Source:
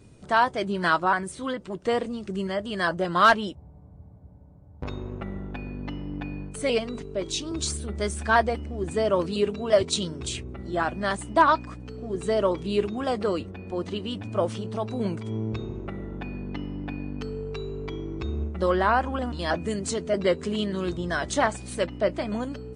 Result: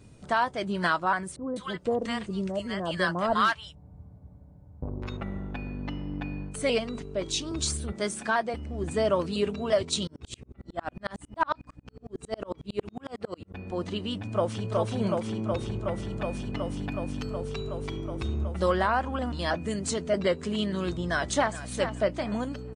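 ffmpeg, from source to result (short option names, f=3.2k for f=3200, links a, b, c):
-filter_complex "[0:a]asettb=1/sr,asplit=3[a][b][c];[a]atrim=end=1.364[d];[b]atrim=start=1.36:end=5.17,asetpts=PTS-STARTPTS,afade=t=in:d=0.004:c=qsin,afade=t=out:st=3.806:d=0.004:c=qsin,acrossover=split=830[e][f];[f]adelay=200[g];[e][g]amix=inputs=2:normalize=0,atrim=end_sample=168021[h];[c]atrim=start=5.166[i];[d][h]acrossfade=d=0.004:c1=hsin:c2=qsin[j];[j][i]acrossfade=d=0.004:c1=qsin:c2=hsin,asettb=1/sr,asplit=3[k][l][m];[k]atrim=end=7.924[n];[l]atrim=start=7.92:end=8.54,asetpts=PTS-STARTPTS,afade=t=in:d=0.004:c=qsin,afade=t=out:st=0.616:d=0.004:c=qsin,highpass=f=150:w=0.5412,highpass=f=150:w=1.3066[o];[m]atrim=start=8.536[p];[n][o]acrossfade=d=0.004:c1=hsin:c2=qsin[q];[q][p]acrossfade=d=0.004:c1=qsin:c2=hsin,asettb=1/sr,asplit=3[r][s][t];[r]atrim=end=10.074[u];[s]atrim=start=10.07:end=13.54,asetpts=PTS-STARTPTS,afade=t=in:d=0.004:c=qsin,afade=t=out:st=3.466:d=0.004:c=qsin,aeval=exprs='val(0)*pow(10,-39*if(lt(mod(-11*n/s,1),2*abs(-11)/1000),1-mod(-11*n/s,1)/(2*abs(-11)/1000),(mod(-11*n/s,1)-2*abs(-11)/1000)/(1-2*abs(-11)/1000))/20)':c=same[v];[t]atrim=start=13.536[w];[u][v]acrossfade=d=0.004:c1=hsin:c2=qsin[x];[x][w]acrossfade=d=0.004:c1=qsin:c2=hsin,asplit=2[y][z];[z]afade=t=in:st=14.18:d=0.01,afade=t=out:st=14.71:d=0.01,aecho=0:1:370|740|1110|1480|1850|2220|2590|2960|3330|3700|4070|4440:0.749894|0.63741|0.541799|0.460529|0.391449|0.332732|0.282822|0.240399|0.204339|0.173688|0.147635|0.12549[aa];[y][aa]amix=inputs=2:normalize=0,asettb=1/sr,asplit=3[ab][ac][ad];[ab]atrim=end=16.104[ae];[ac]atrim=start=16.1:end=18.88,asetpts=PTS-STARTPTS,afade=t=in:d=0.004:c=qsin,afade=t=out:st=2.776:d=0.004:c=qsin,highshelf=f=5.9k:g=6.5[af];[ad]atrim=start=18.876[ag];[ae][af]acrossfade=d=0.004:c1=hsin:c2=qsin[ah];[ah][ag]acrossfade=d=0.004:c1=qsin:c2=hsin,asplit=2[ai][aj];[aj]afade=t=in:st=21:d=0.01,afade=t=out:st=21.65:d=0.01,aecho=0:1:420|840|1260:0.266073|0.0532145|0.0106429[ak];[ai][ak]amix=inputs=2:normalize=0,equalizer=f=380:t=o:w=0.58:g=-3.5,alimiter=limit=-14dB:level=0:latency=1:release=450"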